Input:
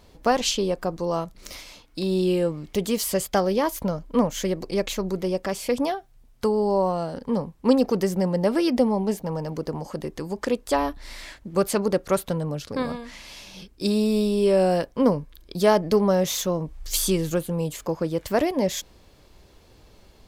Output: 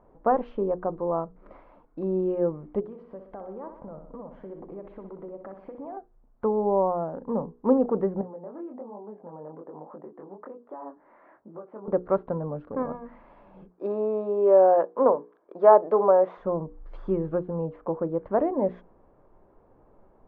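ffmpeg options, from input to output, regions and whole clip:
-filter_complex "[0:a]asettb=1/sr,asplit=3[s0][s1][s2];[s0]atrim=end=2.804[s3];[s1]atrim=start=2.8:end=5.97,asetpts=PTS-STARTPTS,afade=t=in:d=0.004:c=qsin,afade=t=out:st=3.166:d=0.004:c=qsin,acompressor=threshold=0.02:ratio=10:attack=3.2:release=140:knee=1:detection=peak,aecho=1:1:62|124|186|248|310|372|434:0.398|0.235|0.139|0.0818|0.0482|0.0285|0.0168,atrim=end_sample=139797[s4];[s2]atrim=start=5.966[s5];[s3][s4]acrossfade=d=0.004:c1=hsin:c2=qsin[s6];[s6][s5]acrossfade=d=0.004:c1=qsin:c2=hsin,asettb=1/sr,asplit=3[s7][s8][s9];[s7]atrim=end=8.214[s10];[s8]atrim=start=8.21:end=11.88,asetpts=PTS-STARTPTS,afade=t=in:d=0.004:c=qsin,afade=t=out:st=3.666:d=0.004:c=qsin,acompressor=threshold=0.0355:ratio=12:attack=3.2:release=140:knee=1:detection=peak,flanger=delay=18.5:depth=7.8:speed=1.2,highpass=240,lowpass=2100[s11];[s9]atrim=start=11.876[s12];[s10][s11]acrossfade=d=0.004:c1=hsin:c2=qsin[s13];[s13][s12]acrossfade=d=0.004:c1=qsin:c2=hsin,asettb=1/sr,asplit=3[s14][s15][s16];[s14]atrim=end=13.704[s17];[s15]atrim=start=13.7:end=16.38,asetpts=PTS-STARTPTS,afade=t=in:d=0.004:c=qsin,afade=t=out:st=2.676:d=0.004:c=qsin,highpass=480,equalizer=f=660:w=0.32:g=6.5[s18];[s16]atrim=start=16.376[s19];[s17][s18]acrossfade=d=0.004:c1=hsin:c2=qsin[s20];[s20][s19]acrossfade=d=0.004:c1=qsin:c2=hsin,lowpass=f=1200:w=0.5412,lowpass=f=1200:w=1.3066,equalizer=f=63:w=0.53:g=-12,bandreject=f=60:t=h:w=6,bandreject=f=120:t=h:w=6,bandreject=f=180:t=h:w=6,bandreject=f=240:t=h:w=6,bandreject=f=300:t=h:w=6,bandreject=f=360:t=h:w=6,bandreject=f=420:t=h:w=6,bandreject=f=480:t=h:w=6"

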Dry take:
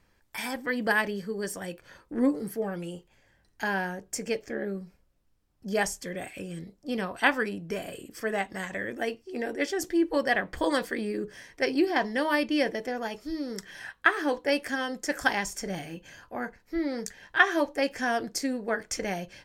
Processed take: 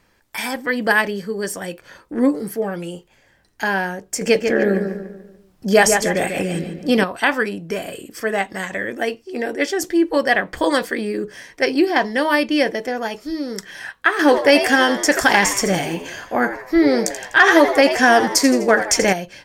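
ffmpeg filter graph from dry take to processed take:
-filter_complex "[0:a]asettb=1/sr,asplit=3[s0][s1][s2];[s0]atrim=end=4.214[s3];[s1]atrim=start=4.21:end=7.04,asetpts=PTS-STARTPTS,afade=t=in:d=0.004:c=qsin,afade=t=out:st=2.826:d=0.004:c=qsin,asplit=2[s4][s5];[s5]adelay=145,lowpass=f=2800:p=1,volume=0.473,asplit=2[s6][s7];[s7]adelay=145,lowpass=f=2800:p=1,volume=0.44,asplit=2[s8][s9];[s9]adelay=145,lowpass=f=2800:p=1,volume=0.44,asplit=2[s10][s11];[s11]adelay=145,lowpass=f=2800:p=1,volume=0.44,asplit=2[s12][s13];[s13]adelay=145,lowpass=f=2800:p=1,volume=0.44[s14];[s4][s6][s8][s10][s12][s14]amix=inputs=6:normalize=0,atrim=end_sample=124803,acontrast=83[s15];[s2]atrim=start=7.036[s16];[s3][s15]acrossfade=d=0.004:c1=hsin:c2=qsin[s17];[s17][s16]acrossfade=d=0.004:c1=qsin:c2=hsin,asettb=1/sr,asplit=3[s18][s19][s20];[s18]atrim=end=14.194[s21];[s19]atrim=start=14.19:end=19.13,asetpts=PTS-STARTPTS,afade=t=in:d=0.004:c=qsin,afade=t=out:st=4.936:d=0.004:c=qsin,acontrast=80,asplit=6[s22][s23][s24][s25][s26][s27];[s23]adelay=83,afreqshift=93,volume=0.266[s28];[s24]adelay=166,afreqshift=186,volume=0.127[s29];[s25]adelay=249,afreqshift=279,volume=0.061[s30];[s26]adelay=332,afreqshift=372,volume=0.0295[s31];[s27]adelay=415,afreqshift=465,volume=0.0141[s32];[s22][s28][s29][s30][s31][s32]amix=inputs=6:normalize=0,atrim=end_sample=217854[s33];[s20]atrim=start=19.126[s34];[s21][s33]acrossfade=d=0.004:c1=hsin:c2=qsin[s35];[s35][s34]acrossfade=d=0.004:c1=qsin:c2=hsin,lowshelf=f=120:g=-8,alimiter=level_in=3.16:limit=0.891:release=50:level=0:latency=1,volume=0.891"

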